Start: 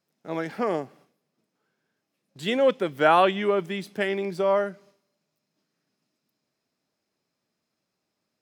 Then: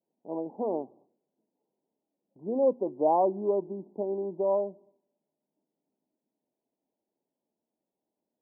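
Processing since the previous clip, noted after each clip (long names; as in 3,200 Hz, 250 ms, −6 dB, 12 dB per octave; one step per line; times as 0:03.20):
Butterworth low-pass 980 Hz 96 dB per octave
low shelf with overshoot 190 Hz −8 dB, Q 1.5
hum removal 120.7 Hz, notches 3
level −4.5 dB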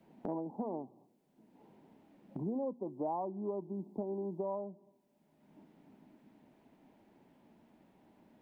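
parametric band 500 Hz −14 dB 1.8 octaves
multiband upward and downward compressor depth 100%
level +1.5 dB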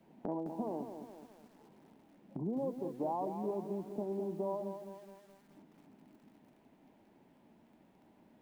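feedback echo at a low word length 211 ms, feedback 55%, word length 10 bits, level −8 dB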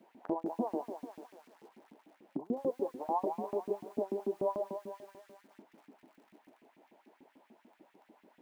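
auto-filter high-pass saw up 6.8 Hz 210–2,500 Hz
level +1.5 dB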